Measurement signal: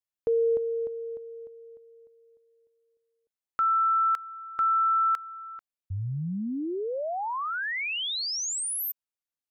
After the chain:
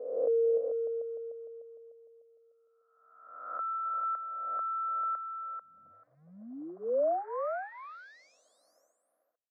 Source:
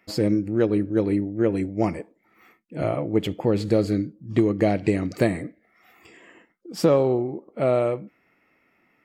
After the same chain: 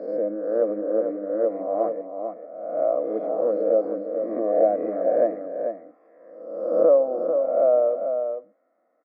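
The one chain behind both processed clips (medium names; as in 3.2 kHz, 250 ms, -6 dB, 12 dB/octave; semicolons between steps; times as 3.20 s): reverse spectral sustain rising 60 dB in 1.09 s; short-mantissa float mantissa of 4-bit; Butterworth band-pass 610 Hz, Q 1.3; static phaser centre 590 Hz, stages 8; on a send: delay 442 ms -7 dB; on the sum: trim +3.5 dB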